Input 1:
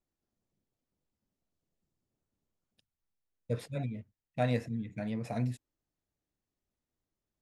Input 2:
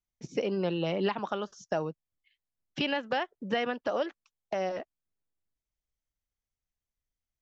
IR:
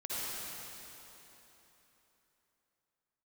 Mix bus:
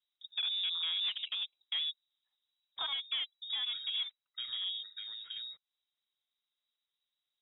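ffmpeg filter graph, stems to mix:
-filter_complex "[0:a]acompressor=threshold=0.00708:ratio=4,volume=0.944,asplit=2[s0][s1];[1:a]afwtdn=0.00891,highpass=f=52:p=1,equalizer=f=470:t=o:w=0.63:g=9,volume=0.398[s2];[s1]apad=whole_len=327208[s3];[s2][s3]sidechaincompress=threshold=0.00355:ratio=3:attack=33:release=278[s4];[s0][s4]amix=inputs=2:normalize=0,equalizer=f=680:t=o:w=0.31:g=5,volume=35.5,asoftclip=hard,volume=0.0282,lowpass=f=3300:t=q:w=0.5098,lowpass=f=3300:t=q:w=0.6013,lowpass=f=3300:t=q:w=0.9,lowpass=f=3300:t=q:w=2.563,afreqshift=-3900"

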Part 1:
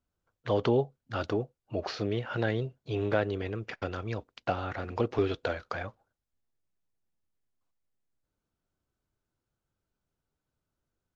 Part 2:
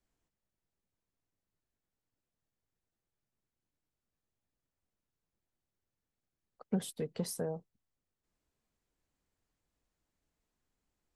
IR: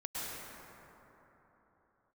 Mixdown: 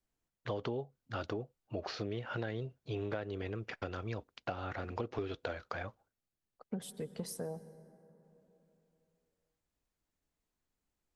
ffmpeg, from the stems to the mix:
-filter_complex "[0:a]agate=range=0.0224:threshold=0.001:ratio=3:detection=peak,volume=0.668[s0];[1:a]volume=0.668,asplit=2[s1][s2];[s2]volume=0.126[s3];[2:a]atrim=start_sample=2205[s4];[s3][s4]afir=irnorm=-1:irlink=0[s5];[s0][s1][s5]amix=inputs=3:normalize=0,acompressor=threshold=0.02:ratio=6"

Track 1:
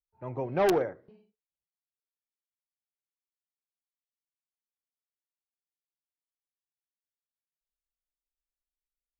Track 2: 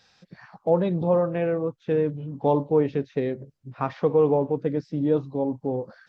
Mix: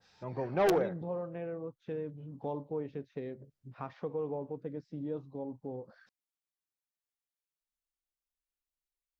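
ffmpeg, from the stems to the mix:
-filter_complex "[0:a]volume=0.75[s0];[1:a]acompressor=threshold=0.00316:ratio=1.5,adynamicequalizer=threshold=0.00251:dfrequency=1800:dqfactor=0.7:tfrequency=1800:tqfactor=0.7:attack=5:release=100:ratio=0.375:range=2:mode=cutabove:tftype=highshelf,volume=0.596[s1];[s0][s1]amix=inputs=2:normalize=0,volume=11.2,asoftclip=hard,volume=0.0891"

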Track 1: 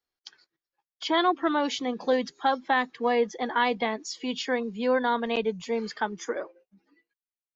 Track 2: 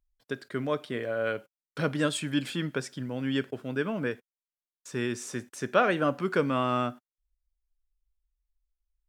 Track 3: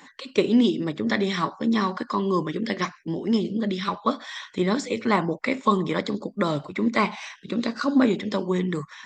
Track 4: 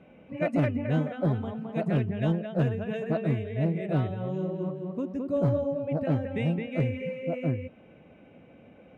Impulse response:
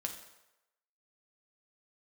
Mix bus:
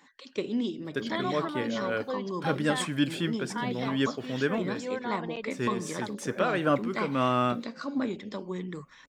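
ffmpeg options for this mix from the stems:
-filter_complex "[0:a]volume=0.299,asplit=3[s0][s1][s2];[s0]atrim=end=2.89,asetpts=PTS-STARTPTS,afade=t=out:st=2.886:d=0.004:c=hsin[s3];[s1]atrim=start=2.89:end=3.5,asetpts=PTS-STARTPTS,volume=0[s4];[s2]atrim=start=3.5,asetpts=PTS-STARTPTS,afade=t=in:d=0.004:c=hsin[s5];[s3][s4][s5]concat=n=3:v=0:a=1[s6];[1:a]adelay=650,volume=1.26[s7];[2:a]volume=0.282,asplit=2[s8][s9];[3:a]acompressor=threshold=0.0178:ratio=6,adelay=500,volume=0.119[s10];[s9]apad=whole_len=429212[s11];[s7][s11]sidechaincompress=threshold=0.0158:ratio=8:attack=16:release=205[s12];[s6][s12][s8][s10]amix=inputs=4:normalize=0"

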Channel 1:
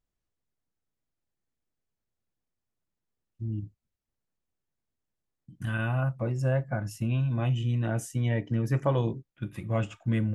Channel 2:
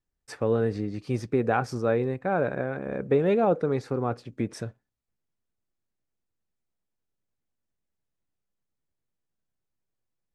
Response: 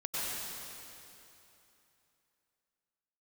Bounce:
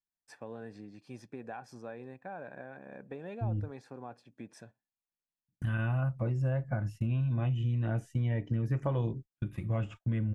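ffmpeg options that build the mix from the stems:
-filter_complex "[0:a]agate=range=0.02:threshold=0.00794:ratio=16:detection=peak,acrossover=split=3300[s0][s1];[s1]acompressor=threshold=0.00112:ratio=4:attack=1:release=60[s2];[s0][s2]amix=inputs=2:normalize=0,volume=0.708[s3];[1:a]highpass=250,aecho=1:1:1.2:0.5,acompressor=threshold=0.0562:ratio=6,volume=0.2[s4];[s3][s4]amix=inputs=2:normalize=0,lowshelf=f=96:g=11,acompressor=threshold=0.0447:ratio=6"

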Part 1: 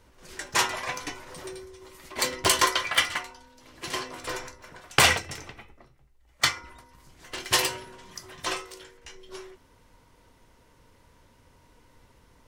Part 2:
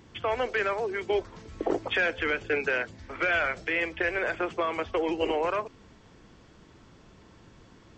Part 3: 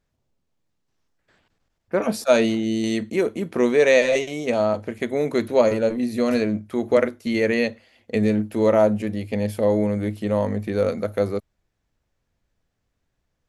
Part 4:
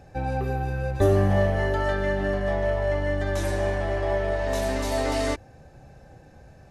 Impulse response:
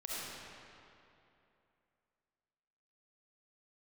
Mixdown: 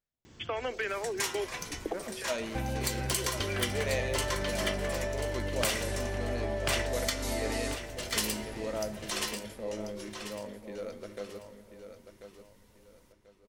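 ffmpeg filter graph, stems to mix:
-filter_complex "[0:a]adelay=650,volume=0.501,asplit=3[s0][s1][s2];[s1]volume=0.112[s3];[s2]volume=0.501[s4];[1:a]asoftclip=type=hard:threshold=0.141,adelay=250,volume=0.891[s5];[2:a]lowshelf=f=410:g=-7.5,bandreject=f=50:t=h:w=6,bandreject=f=100:t=h:w=6,volume=0.178,asplit=4[s6][s7][s8][s9];[s7]volume=0.224[s10];[s8]volume=0.376[s11];[3:a]acompressor=threshold=0.0355:ratio=6,adelay=2400,volume=1.06,asplit=2[s12][s13];[s13]volume=0.224[s14];[s9]apad=whole_len=362617[s15];[s5][s15]sidechaincompress=threshold=0.00251:ratio=8:attack=16:release=849[s16];[s0][s16][s12]amix=inputs=3:normalize=0,highshelf=f=6300:g=10,acompressor=threshold=0.0398:ratio=6,volume=1[s17];[4:a]atrim=start_sample=2205[s18];[s3][s10]amix=inputs=2:normalize=0[s19];[s19][s18]afir=irnorm=-1:irlink=0[s20];[s4][s11][s14]amix=inputs=3:normalize=0,aecho=0:1:1039|2078|3117|4156:1|0.29|0.0841|0.0244[s21];[s6][s17][s20][s21]amix=inputs=4:normalize=0,equalizer=f=980:t=o:w=1.6:g=-3.5"

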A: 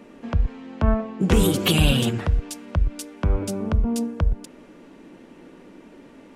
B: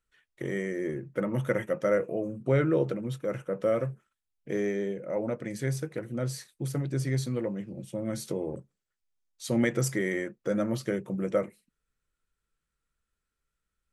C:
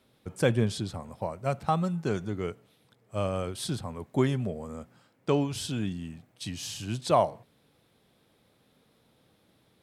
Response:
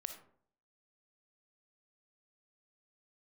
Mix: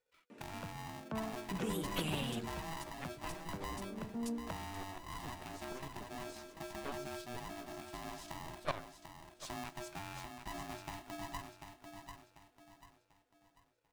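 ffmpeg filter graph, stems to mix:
-filter_complex "[0:a]highpass=f=130:w=0.5412,highpass=f=130:w=1.3066,adelay=300,volume=0.335[s0];[1:a]lowpass=7600,acompressor=threshold=0.00794:ratio=3,aeval=exprs='val(0)*sgn(sin(2*PI*490*n/s))':c=same,volume=0.562,asplit=3[s1][s2][s3];[s2]volume=0.447[s4];[2:a]aeval=exprs='0.299*(cos(1*acos(clip(val(0)/0.299,-1,1)))-cos(1*PI/2))+0.0841*(cos(3*acos(clip(val(0)/0.299,-1,1)))-cos(3*PI/2))+0.0335*(cos(5*acos(clip(val(0)/0.299,-1,1)))-cos(5*PI/2))+0.0422*(cos(6*acos(clip(val(0)/0.299,-1,1)))-cos(6*PI/2))+0.0473*(cos(7*acos(clip(val(0)/0.299,-1,1)))-cos(7*PI/2))':c=same,aeval=exprs='val(0)*pow(10,-18*if(lt(mod(-6.7*n/s,1),2*abs(-6.7)/1000),1-mod(-6.7*n/s,1)/(2*abs(-6.7)/1000),(mod(-6.7*n/s,1)-2*abs(-6.7)/1000)/(1-2*abs(-6.7)/1000))/20)':c=same,adelay=1550,volume=0.376,asplit=2[s5][s6];[s6]volume=0.141[s7];[s3]apad=whole_len=293490[s8];[s0][s8]sidechaincompress=threshold=0.00251:ratio=4:attack=39:release=1140[s9];[s4][s7]amix=inputs=2:normalize=0,aecho=0:1:742|1484|2226|2968|3710:1|0.36|0.13|0.0467|0.0168[s10];[s9][s1][s5][s10]amix=inputs=4:normalize=0"

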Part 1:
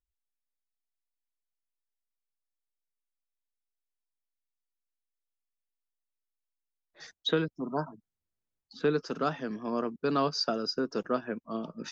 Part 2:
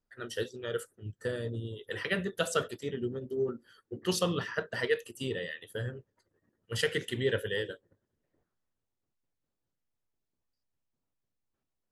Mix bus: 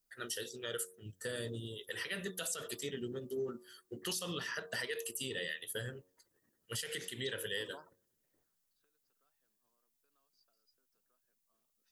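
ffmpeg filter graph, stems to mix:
-filter_complex "[0:a]acompressor=threshold=0.0178:ratio=6,highpass=f=1500:p=1,volume=0.501[s0];[1:a]bandreject=f=91.71:t=h:w=4,bandreject=f=183.42:t=h:w=4,bandreject=f=275.13:t=h:w=4,bandreject=f=366.84:t=h:w=4,bandreject=f=458.55:t=h:w=4,bandreject=f=550.26:t=h:w=4,bandreject=f=641.97:t=h:w=4,bandreject=f=733.68:t=h:w=4,bandreject=f=825.39:t=h:w=4,bandreject=f=917.1:t=h:w=4,bandreject=f=1008.81:t=h:w=4,bandreject=f=1100.52:t=h:w=4,bandreject=f=1192.23:t=h:w=4,alimiter=level_in=1.33:limit=0.0631:level=0:latency=1:release=122,volume=0.75,crystalizer=i=5:c=0,volume=0.596,asplit=2[s1][s2];[s2]apad=whole_len=525577[s3];[s0][s3]sidechaingate=range=0.0316:threshold=0.00112:ratio=16:detection=peak[s4];[s4][s1]amix=inputs=2:normalize=0,equalizer=f=85:t=o:w=0.67:g=-7.5,alimiter=level_in=1.5:limit=0.0631:level=0:latency=1:release=137,volume=0.668"

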